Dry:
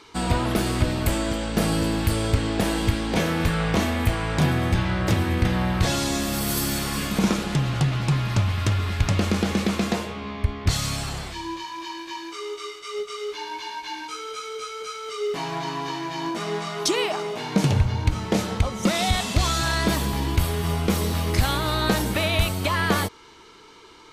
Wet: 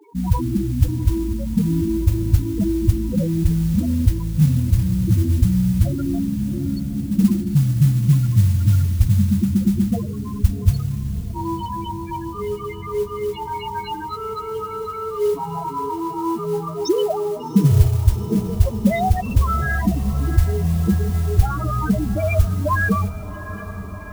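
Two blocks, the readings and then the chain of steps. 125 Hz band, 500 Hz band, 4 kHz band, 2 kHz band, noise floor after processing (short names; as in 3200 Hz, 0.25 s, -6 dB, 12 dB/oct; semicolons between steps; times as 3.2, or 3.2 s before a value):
+6.5 dB, +2.5 dB, -11.5 dB, -3.0 dB, -31 dBFS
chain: loudest bins only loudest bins 4; modulation noise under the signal 24 dB; diffused feedback echo 0.733 s, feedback 71%, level -14.5 dB; gain +7.5 dB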